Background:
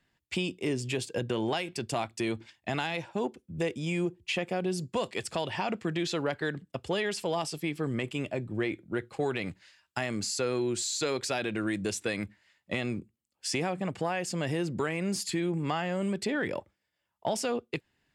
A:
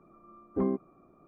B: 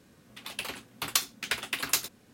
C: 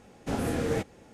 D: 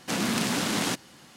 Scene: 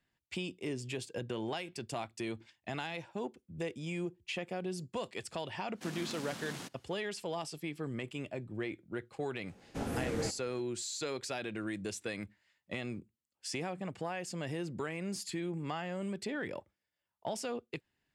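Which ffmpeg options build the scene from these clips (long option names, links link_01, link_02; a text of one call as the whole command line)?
ffmpeg -i bed.wav -i cue0.wav -i cue1.wav -i cue2.wav -i cue3.wav -filter_complex "[0:a]volume=-7.5dB[link_01];[4:a]atrim=end=1.36,asetpts=PTS-STARTPTS,volume=-17.5dB,afade=type=in:duration=0.05,afade=type=out:start_time=1.31:duration=0.05,adelay=252693S[link_02];[3:a]atrim=end=1.13,asetpts=PTS-STARTPTS,volume=-7dB,afade=type=in:duration=0.004:curve=hsin,afade=type=out:start_time=1.126:duration=0.004:curve=hsin,adelay=9480[link_03];[link_01][link_02][link_03]amix=inputs=3:normalize=0" out.wav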